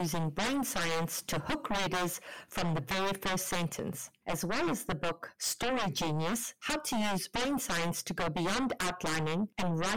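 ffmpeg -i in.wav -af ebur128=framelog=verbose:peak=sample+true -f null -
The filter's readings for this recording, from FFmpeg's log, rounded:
Integrated loudness:
  I:         -33.3 LUFS
  Threshold: -43.3 LUFS
Loudness range:
  LRA:         1.4 LU
  Threshold: -53.5 LUFS
  LRA low:   -34.2 LUFS
  LRA high:  -32.8 LUFS
Sample peak:
  Peak:      -26.4 dBFS
True peak:
  Peak:      -26.1 dBFS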